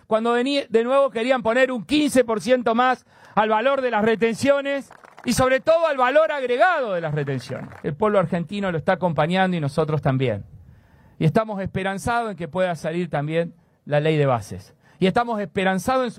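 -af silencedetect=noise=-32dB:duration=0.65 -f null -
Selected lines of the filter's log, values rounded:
silence_start: 10.41
silence_end: 11.20 | silence_duration: 0.79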